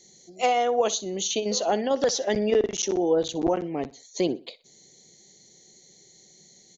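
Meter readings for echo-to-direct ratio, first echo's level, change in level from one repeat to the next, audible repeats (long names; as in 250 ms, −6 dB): −18.5 dB, −19.0 dB, −10.0 dB, 2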